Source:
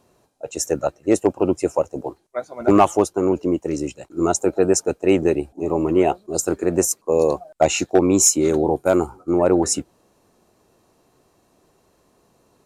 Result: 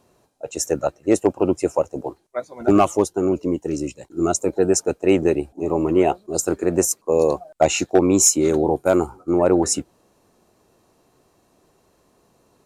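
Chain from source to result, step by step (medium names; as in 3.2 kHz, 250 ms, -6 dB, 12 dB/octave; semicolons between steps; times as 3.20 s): 2.40–4.74 s: Shepard-style phaser falling 2 Hz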